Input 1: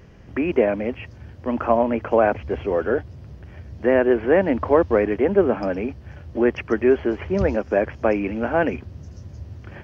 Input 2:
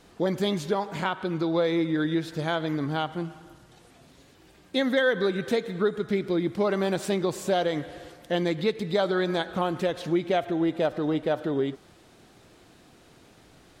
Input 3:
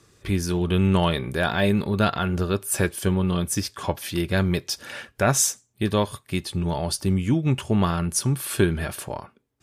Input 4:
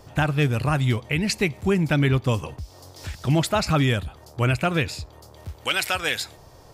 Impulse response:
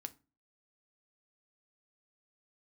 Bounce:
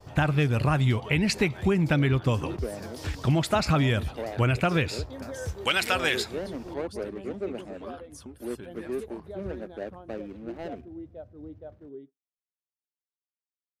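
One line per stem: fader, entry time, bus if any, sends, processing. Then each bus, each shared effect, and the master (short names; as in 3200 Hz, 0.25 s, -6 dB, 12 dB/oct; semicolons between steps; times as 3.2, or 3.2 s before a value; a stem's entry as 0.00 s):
-15.0 dB, 2.05 s, no send, no echo send, median filter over 41 samples
-19.5 dB, 0.35 s, send -7.5 dB, no echo send, spectral expander 1.5:1
-14.0 dB, 0.00 s, no send, echo send -21.5 dB, median-filter separation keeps percussive; limiter -18.5 dBFS, peak gain reduction 10.5 dB
+1.5 dB, 0.00 s, no send, no echo send, dry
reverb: on, RT60 0.30 s, pre-delay 4 ms
echo: feedback echo 0.317 s, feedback 59%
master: expander -44 dBFS; high shelf 6000 Hz -7.5 dB; compressor, threshold -19 dBFS, peak gain reduction 6 dB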